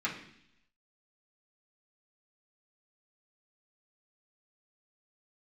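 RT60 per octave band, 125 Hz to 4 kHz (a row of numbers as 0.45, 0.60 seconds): 0.90, 0.85, 0.70, 0.65, 0.85, 0.95 seconds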